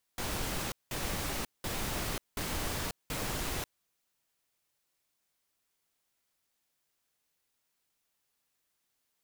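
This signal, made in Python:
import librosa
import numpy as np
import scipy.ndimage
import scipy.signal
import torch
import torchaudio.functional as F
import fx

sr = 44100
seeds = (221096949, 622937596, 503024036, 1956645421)

y = fx.noise_burst(sr, seeds[0], colour='pink', on_s=0.54, off_s=0.19, bursts=5, level_db=-35.0)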